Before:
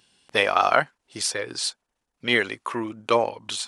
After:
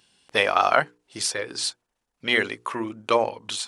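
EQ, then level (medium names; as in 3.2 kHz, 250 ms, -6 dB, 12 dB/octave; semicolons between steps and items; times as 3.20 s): hum notches 60/120/180/240/300/360/420/480 Hz; 0.0 dB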